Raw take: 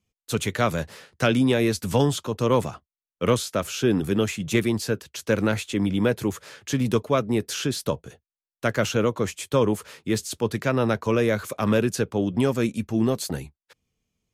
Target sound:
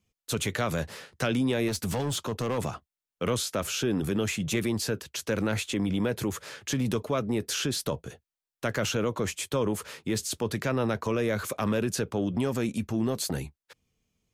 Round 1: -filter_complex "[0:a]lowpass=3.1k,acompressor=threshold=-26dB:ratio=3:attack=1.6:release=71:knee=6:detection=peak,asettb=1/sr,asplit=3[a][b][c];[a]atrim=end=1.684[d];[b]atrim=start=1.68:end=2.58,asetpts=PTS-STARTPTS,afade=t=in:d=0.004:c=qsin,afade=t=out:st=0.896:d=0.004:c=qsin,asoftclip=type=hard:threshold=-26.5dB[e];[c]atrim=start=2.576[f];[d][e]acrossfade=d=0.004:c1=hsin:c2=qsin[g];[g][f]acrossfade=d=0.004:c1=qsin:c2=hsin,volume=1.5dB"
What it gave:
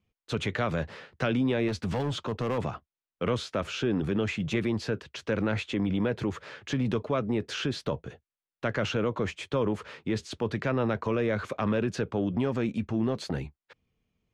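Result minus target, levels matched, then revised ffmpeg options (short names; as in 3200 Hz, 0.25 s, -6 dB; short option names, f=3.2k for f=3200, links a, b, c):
4000 Hz band -3.0 dB
-filter_complex "[0:a]acompressor=threshold=-26dB:ratio=3:attack=1.6:release=71:knee=6:detection=peak,asettb=1/sr,asplit=3[a][b][c];[a]atrim=end=1.684[d];[b]atrim=start=1.68:end=2.58,asetpts=PTS-STARTPTS,afade=t=in:d=0.004:c=qsin,afade=t=out:st=0.896:d=0.004:c=qsin,asoftclip=type=hard:threshold=-26.5dB[e];[c]atrim=start=2.576[f];[d][e]acrossfade=d=0.004:c1=hsin:c2=qsin[g];[g][f]acrossfade=d=0.004:c1=qsin:c2=hsin,volume=1.5dB"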